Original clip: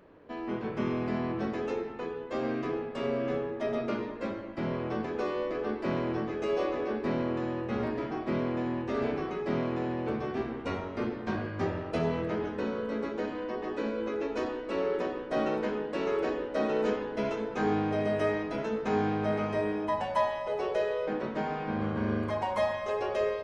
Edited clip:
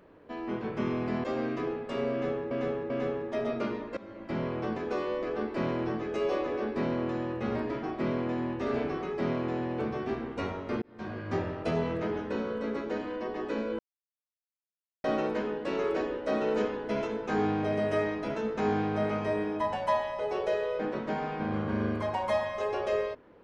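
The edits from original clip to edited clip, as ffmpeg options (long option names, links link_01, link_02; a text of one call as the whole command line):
ffmpeg -i in.wav -filter_complex "[0:a]asplit=8[link_01][link_02][link_03][link_04][link_05][link_06][link_07][link_08];[link_01]atrim=end=1.242[link_09];[link_02]atrim=start=2.298:end=3.572[link_10];[link_03]atrim=start=3.178:end=3.572[link_11];[link_04]atrim=start=3.178:end=4.25,asetpts=PTS-STARTPTS,afade=type=out:start_time=1.068:duration=0.004:curve=hsin:silence=0.105925[link_12];[link_05]atrim=start=4.25:end=11.1,asetpts=PTS-STARTPTS,afade=type=in:duration=0.32:silence=0.105925,afade=type=out:start_time=6.846:duration=0.004:curve=hsin[link_13];[link_06]atrim=start=11.1:end=14.07,asetpts=PTS-STARTPTS,afade=type=in:duration=0.49,afade=type=out:start_time=2.966:duration=0.004:curve=hsin[link_14];[link_07]atrim=start=14.07:end=15.32,asetpts=PTS-STARTPTS,volume=0[link_15];[link_08]atrim=start=15.32,asetpts=PTS-STARTPTS,afade=type=in:duration=0.004:curve=hsin[link_16];[link_09][link_10]acrossfade=duration=0.004:curve1=hsin:curve2=hsin[link_17];[link_17][link_11]acrossfade=duration=0.004:curve1=hsin:curve2=hsin[link_18];[link_12][link_13][link_14][link_15][link_16]concat=n=5:v=0:a=1[link_19];[link_18][link_19]acrossfade=duration=0.004:curve1=hsin:curve2=hsin" out.wav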